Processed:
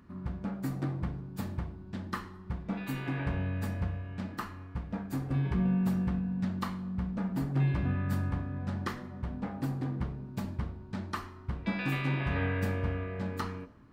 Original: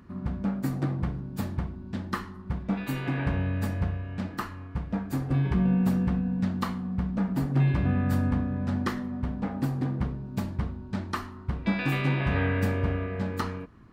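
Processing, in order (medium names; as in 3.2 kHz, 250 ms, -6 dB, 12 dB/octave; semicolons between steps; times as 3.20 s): de-hum 49.47 Hz, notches 16; on a send: reverberation RT60 0.95 s, pre-delay 5 ms, DRR 15.5 dB; on the sum: trim -4.5 dB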